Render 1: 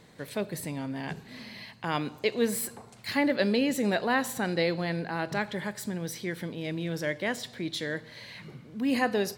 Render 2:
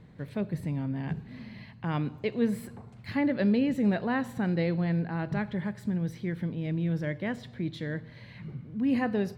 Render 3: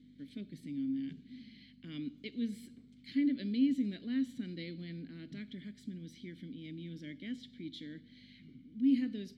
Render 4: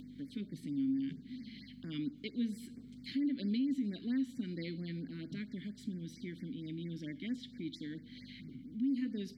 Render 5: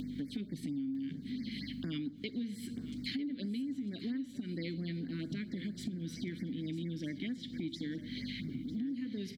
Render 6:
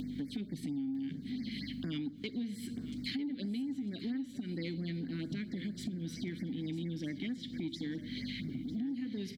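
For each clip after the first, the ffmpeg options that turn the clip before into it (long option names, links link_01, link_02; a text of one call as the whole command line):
ffmpeg -i in.wav -af "bass=frequency=250:gain=14,treble=frequency=4000:gain=-14,volume=-5dB" out.wav
ffmpeg -i in.wav -filter_complex "[0:a]aexciter=amount=7.8:drive=4.7:freq=3500,aeval=exprs='val(0)+0.00891*(sin(2*PI*50*n/s)+sin(2*PI*2*50*n/s)/2+sin(2*PI*3*50*n/s)/3+sin(2*PI*4*50*n/s)/4+sin(2*PI*5*50*n/s)/5)':channel_layout=same,asplit=3[link_01][link_02][link_03];[link_01]bandpass=frequency=270:width_type=q:width=8,volume=0dB[link_04];[link_02]bandpass=frequency=2290:width_type=q:width=8,volume=-6dB[link_05];[link_03]bandpass=frequency=3010:width_type=q:width=8,volume=-9dB[link_06];[link_04][link_05][link_06]amix=inputs=3:normalize=0" out.wav
ffmpeg -i in.wav -filter_complex "[0:a]asplit=2[link_01][link_02];[link_02]acompressor=mode=upward:threshold=-40dB:ratio=2.5,volume=-1dB[link_03];[link_01][link_03]amix=inputs=2:normalize=0,alimiter=level_in=0.5dB:limit=-24dB:level=0:latency=1:release=183,volume=-0.5dB,afftfilt=real='re*(1-between(b*sr/1024,600*pow(3300/600,0.5+0.5*sin(2*PI*4.4*pts/sr))/1.41,600*pow(3300/600,0.5+0.5*sin(2*PI*4.4*pts/sr))*1.41))':imag='im*(1-between(b*sr/1024,600*pow(3300/600,0.5+0.5*sin(2*PI*4.4*pts/sr))/1.41,600*pow(3300/600,0.5+0.5*sin(2*PI*4.4*pts/sr))*1.41))':win_size=1024:overlap=0.75,volume=-3dB" out.wav
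ffmpeg -i in.wav -af "acompressor=threshold=-46dB:ratio=10,aecho=1:1:950|1900|2850:0.2|0.0479|0.0115,volume=10.5dB" out.wav
ffmpeg -i in.wav -af "asoftclip=type=tanh:threshold=-26.5dB,volume=1dB" out.wav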